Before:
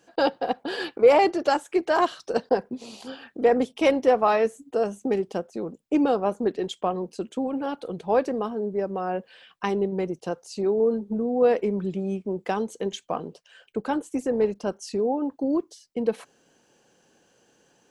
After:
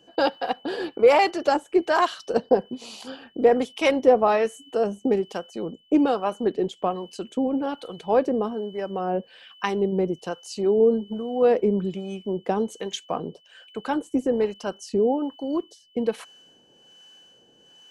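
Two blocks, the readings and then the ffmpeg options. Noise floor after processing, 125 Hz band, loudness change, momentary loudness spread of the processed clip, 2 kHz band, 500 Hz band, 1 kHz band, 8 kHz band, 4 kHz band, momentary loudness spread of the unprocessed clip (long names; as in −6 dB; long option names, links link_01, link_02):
−58 dBFS, +1.0 dB, +1.5 dB, 13 LU, +1.5 dB, +1.0 dB, +1.0 dB, can't be measured, +2.5 dB, 12 LU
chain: -filter_complex "[0:a]aeval=exprs='val(0)+0.00224*sin(2*PI*3000*n/s)':channel_layout=same,acrossover=split=780[link_01][link_02];[link_01]aeval=exprs='val(0)*(1-0.7/2+0.7/2*cos(2*PI*1.2*n/s))':channel_layout=same[link_03];[link_02]aeval=exprs='val(0)*(1-0.7/2-0.7/2*cos(2*PI*1.2*n/s))':channel_layout=same[link_04];[link_03][link_04]amix=inputs=2:normalize=0,volume=4.5dB"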